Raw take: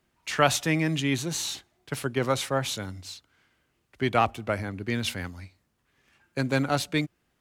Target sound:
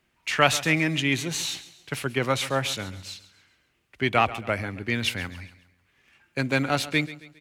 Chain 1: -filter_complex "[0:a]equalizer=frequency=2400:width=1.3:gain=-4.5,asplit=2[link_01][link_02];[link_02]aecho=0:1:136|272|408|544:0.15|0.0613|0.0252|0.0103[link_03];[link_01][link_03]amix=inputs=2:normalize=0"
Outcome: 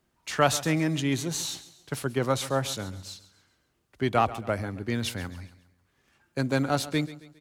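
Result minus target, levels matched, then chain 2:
2,000 Hz band −5.5 dB
-filter_complex "[0:a]equalizer=frequency=2400:width=1.3:gain=7,asplit=2[link_01][link_02];[link_02]aecho=0:1:136|272|408|544:0.15|0.0613|0.0252|0.0103[link_03];[link_01][link_03]amix=inputs=2:normalize=0"

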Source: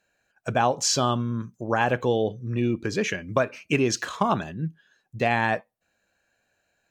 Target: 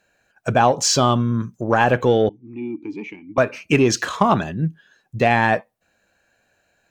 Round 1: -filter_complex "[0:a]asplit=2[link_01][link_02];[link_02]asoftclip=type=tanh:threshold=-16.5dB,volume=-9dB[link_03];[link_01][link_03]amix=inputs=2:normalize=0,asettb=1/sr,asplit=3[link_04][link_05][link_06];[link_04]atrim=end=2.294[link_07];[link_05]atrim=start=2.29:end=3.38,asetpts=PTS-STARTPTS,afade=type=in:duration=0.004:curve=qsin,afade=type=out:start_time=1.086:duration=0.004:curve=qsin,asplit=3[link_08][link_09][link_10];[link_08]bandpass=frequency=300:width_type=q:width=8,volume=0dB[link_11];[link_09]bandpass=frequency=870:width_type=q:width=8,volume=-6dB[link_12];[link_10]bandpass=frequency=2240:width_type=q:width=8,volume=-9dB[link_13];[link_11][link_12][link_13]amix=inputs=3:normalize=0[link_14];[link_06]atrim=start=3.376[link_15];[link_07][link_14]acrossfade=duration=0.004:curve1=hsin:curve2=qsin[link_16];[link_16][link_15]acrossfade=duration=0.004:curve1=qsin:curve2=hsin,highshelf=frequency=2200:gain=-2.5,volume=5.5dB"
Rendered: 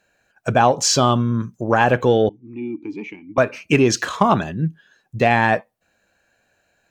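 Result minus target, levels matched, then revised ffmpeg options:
soft clipping: distortion −6 dB
-filter_complex "[0:a]asplit=2[link_01][link_02];[link_02]asoftclip=type=tanh:threshold=-23.5dB,volume=-9dB[link_03];[link_01][link_03]amix=inputs=2:normalize=0,asettb=1/sr,asplit=3[link_04][link_05][link_06];[link_04]atrim=end=2.294[link_07];[link_05]atrim=start=2.29:end=3.38,asetpts=PTS-STARTPTS,afade=type=in:duration=0.004:curve=qsin,afade=type=out:start_time=1.086:duration=0.004:curve=qsin,asplit=3[link_08][link_09][link_10];[link_08]bandpass=frequency=300:width_type=q:width=8,volume=0dB[link_11];[link_09]bandpass=frequency=870:width_type=q:width=8,volume=-6dB[link_12];[link_10]bandpass=frequency=2240:width_type=q:width=8,volume=-9dB[link_13];[link_11][link_12][link_13]amix=inputs=3:normalize=0[link_14];[link_06]atrim=start=3.376[link_15];[link_07][link_14]acrossfade=duration=0.004:curve1=hsin:curve2=qsin[link_16];[link_16][link_15]acrossfade=duration=0.004:curve1=qsin:curve2=hsin,highshelf=frequency=2200:gain=-2.5,volume=5.5dB"

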